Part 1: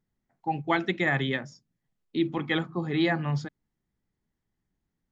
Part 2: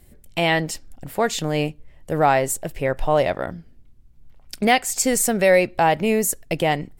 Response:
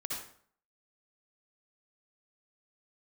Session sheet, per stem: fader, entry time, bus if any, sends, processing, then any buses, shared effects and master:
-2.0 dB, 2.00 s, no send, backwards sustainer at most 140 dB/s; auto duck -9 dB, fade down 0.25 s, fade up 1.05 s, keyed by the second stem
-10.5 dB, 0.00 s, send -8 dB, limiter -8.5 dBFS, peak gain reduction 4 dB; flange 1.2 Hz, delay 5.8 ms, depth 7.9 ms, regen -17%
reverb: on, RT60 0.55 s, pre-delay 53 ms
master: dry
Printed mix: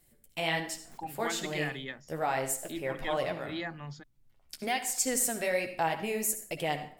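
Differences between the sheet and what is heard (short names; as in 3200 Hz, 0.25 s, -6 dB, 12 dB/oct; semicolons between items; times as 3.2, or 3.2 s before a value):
stem 1: entry 2.00 s -> 0.55 s; master: extra tilt +1.5 dB/oct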